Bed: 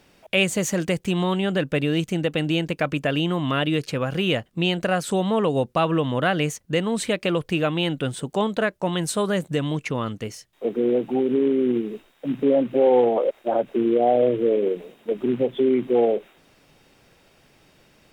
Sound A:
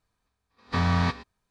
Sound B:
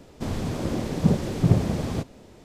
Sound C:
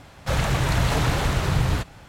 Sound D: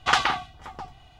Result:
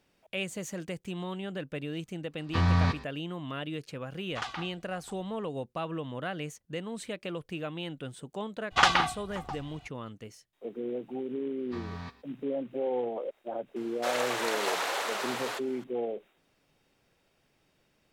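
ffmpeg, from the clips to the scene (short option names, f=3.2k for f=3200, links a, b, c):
-filter_complex "[1:a]asplit=2[a][b];[4:a]asplit=2[c][d];[0:a]volume=-14dB[e];[a]equalizer=f=77:w=0.87:g=5.5[f];[3:a]highpass=f=450:w=0.5412,highpass=f=450:w=1.3066[g];[f]atrim=end=1.5,asetpts=PTS-STARTPTS,volume=-4dB,afade=t=in:d=0.004:c=hsin,afade=t=out:st=1.496:d=0.004:c=hsin,adelay=1810[h];[c]atrim=end=1.19,asetpts=PTS-STARTPTS,volume=-16dB,afade=t=in:d=0.004:c=hsin,afade=t=out:st=1.186:d=0.004:c=hsin,adelay=189189S[i];[d]atrim=end=1.19,asetpts=PTS-STARTPTS,volume=-1dB,afade=t=in:d=0.02,afade=t=out:st=1.17:d=0.02,adelay=8700[j];[b]atrim=end=1.5,asetpts=PTS-STARTPTS,volume=-17dB,afade=t=in:d=0.004:c=hsin,afade=t=out:st=1.496:d=0.004:c=hsin,adelay=10990[k];[g]atrim=end=2.08,asetpts=PTS-STARTPTS,volume=-4dB,afade=t=in:d=0.004:c=hsin,afade=t=out:st=2.076:d=0.004:c=hsin,adelay=13760[l];[e][h][i][j][k][l]amix=inputs=6:normalize=0"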